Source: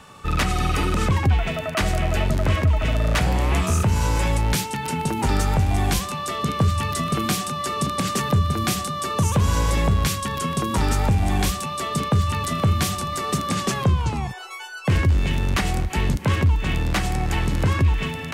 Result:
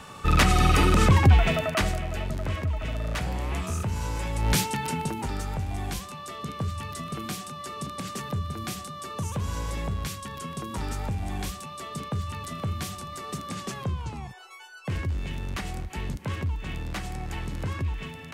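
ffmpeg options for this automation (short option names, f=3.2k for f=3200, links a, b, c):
-af "volume=11.5dB,afade=t=out:st=1.52:d=0.5:silence=0.266073,afade=t=in:st=4.34:d=0.24:silence=0.334965,afade=t=out:st=4.58:d=0.72:silence=0.281838"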